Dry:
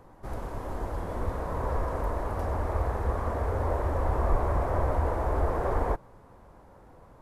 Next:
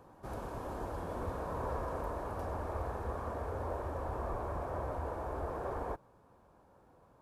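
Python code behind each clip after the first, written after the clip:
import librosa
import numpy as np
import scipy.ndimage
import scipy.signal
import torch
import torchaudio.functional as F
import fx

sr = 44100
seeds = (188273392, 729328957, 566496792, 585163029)

y = fx.highpass(x, sr, hz=97.0, slope=6)
y = fx.notch(y, sr, hz=2000.0, q=7.8)
y = fx.rider(y, sr, range_db=4, speed_s=2.0)
y = y * 10.0 ** (-7.0 / 20.0)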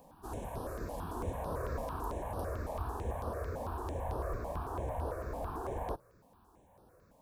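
y = fx.high_shelf(x, sr, hz=7900.0, db=10.0)
y = fx.quant_companded(y, sr, bits=8)
y = fx.phaser_held(y, sr, hz=9.0, low_hz=370.0, high_hz=7200.0)
y = y * 10.0 ** (2.5 / 20.0)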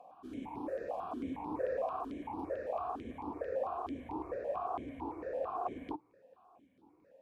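y = fx.vowel_held(x, sr, hz=4.4)
y = y * 10.0 ** (11.5 / 20.0)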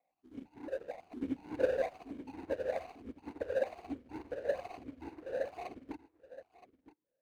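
y = scipy.ndimage.median_filter(x, 41, mode='constant')
y = y + 10.0 ** (-6.0 / 20.0) * np.pad(y, (int(971 * sr / 1000.0), 0))[:len(y)]
y = fx.upward_expand(y, sr, threshold_db=-54.0, expansion=2.5)
y = y * 10.0 ** (8.5 / 20.0)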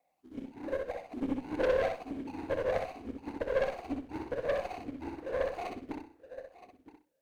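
y = fx.tube_stage(x, sr, drive_db=32.0, bias=0.5)
y = fx.echo_feedback(y, sr, ms=63, feedback_pct=22, wet_db=-4.5)
y = y * 10.0 ** (7.0 / 20.0)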